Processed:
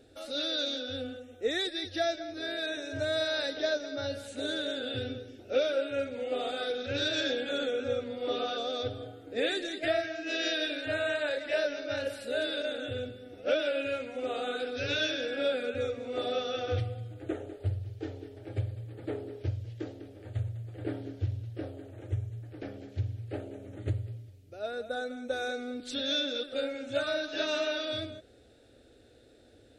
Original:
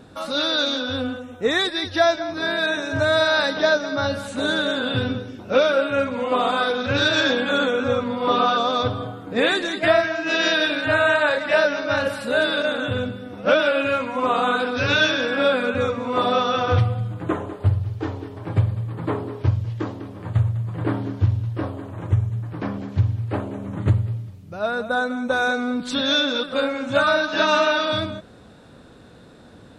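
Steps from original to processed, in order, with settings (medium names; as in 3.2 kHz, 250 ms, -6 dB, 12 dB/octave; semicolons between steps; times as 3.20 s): static phaser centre 430 Hz, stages 4; trim -8.5 dB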